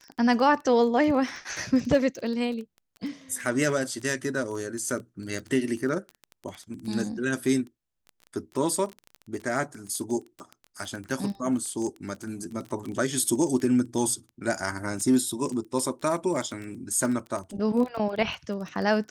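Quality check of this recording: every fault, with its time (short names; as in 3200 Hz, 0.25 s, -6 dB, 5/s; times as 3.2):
crackle 15/s -31 dBFS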